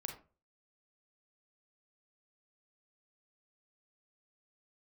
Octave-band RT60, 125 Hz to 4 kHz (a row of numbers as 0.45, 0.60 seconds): 0.50, 0.40, 0.40, 0.30, 0.25, 0.20 seconds